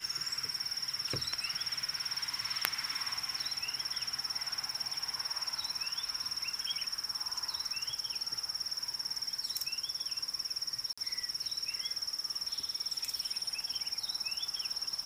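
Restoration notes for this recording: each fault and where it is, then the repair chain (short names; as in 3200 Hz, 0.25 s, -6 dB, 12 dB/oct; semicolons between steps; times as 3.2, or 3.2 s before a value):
crackle 53/s -41 dBFS
10.93–10.97 gap 45 ms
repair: de-click; interpolate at 10.93, 45 ms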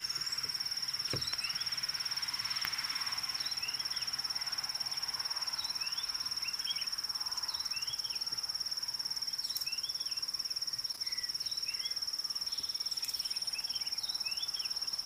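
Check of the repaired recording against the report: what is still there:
none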